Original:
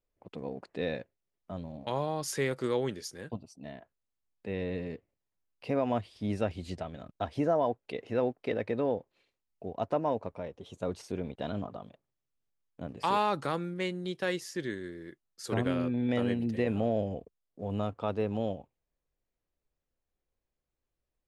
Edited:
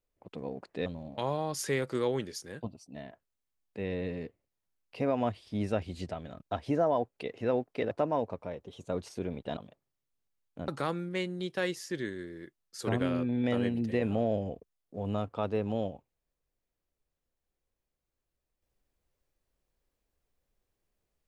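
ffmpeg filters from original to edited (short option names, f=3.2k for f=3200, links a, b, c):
-filter_complex "[0:a]asplit=5[a][b][c][d][e];[a]atrim=end=0.862[f];[b]atrim=start=1.548:end=8.602[g];[c]atrim=start=9.838:end=11.502[h];[d]atrim=start=11.788:end=12.902[i];[e]atrim=start=13.328[j];[f][g]acrossfade=d=0.004:c1=hsin:c2=hsin[k];[k][h]acrossfade=d=0.004:c1=hsin:c2=hsin[l];[l][i]acrossfade=d=0.004:c1=hsin:c2=hsin[m];[m][j]acrossfade=d=0.004:c1=hsin:c2=hsin"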